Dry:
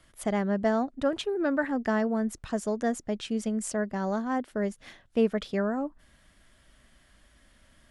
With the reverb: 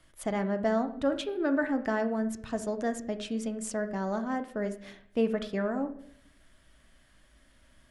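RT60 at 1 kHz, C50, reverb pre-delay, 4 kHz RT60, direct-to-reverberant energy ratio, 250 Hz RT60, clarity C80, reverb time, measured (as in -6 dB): 0.55 s, 12.0 dB, 3 ms, 0.50 s, 7.5 dB, 0.85 s, 15.5 dB, 0.65 s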